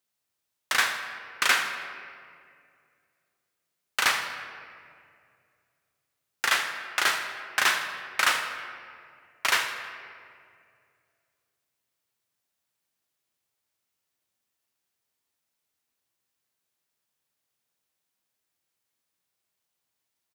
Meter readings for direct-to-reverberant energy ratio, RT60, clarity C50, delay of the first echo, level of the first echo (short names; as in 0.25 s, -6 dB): 5.0 dB, 2.3 s, 6.5 dB, 80 ms, -13.5 dB